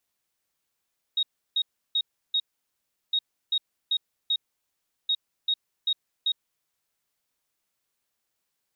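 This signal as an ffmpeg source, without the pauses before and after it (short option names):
-f lavfi -i "aevalsrc='0.0891*sin(2*PI*3760*t)*clip(min(mod(mod(t,1.96),0.39),0.06-mod(mod(t,1.96),0.39))/0.005,0,1)*lt(mod(t,1.96),1.56)':d=5.88:s=44100"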